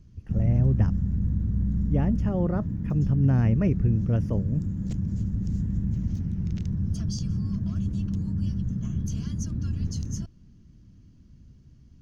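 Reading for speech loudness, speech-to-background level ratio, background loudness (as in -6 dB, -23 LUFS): -26.0 LUFS, 3.0 dB, -29.0 LUFS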